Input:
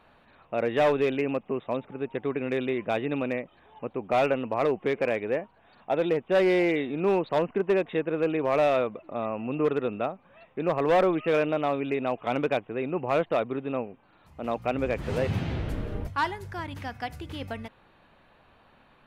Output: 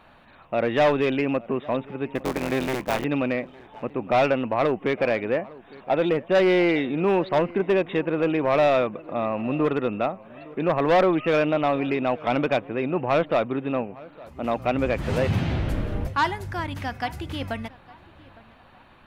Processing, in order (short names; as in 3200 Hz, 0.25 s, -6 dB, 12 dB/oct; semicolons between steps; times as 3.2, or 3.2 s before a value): 2.15–3.05 cycle switcher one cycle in 3, muted; bell 440 Hz -5 dB 0.33 oct; soft clip -18 dBFS, distortion -20 dB; darkening echo 0.859 s, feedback 38%, low-pass 2300 Hz, level -21 dB; gain +6 dB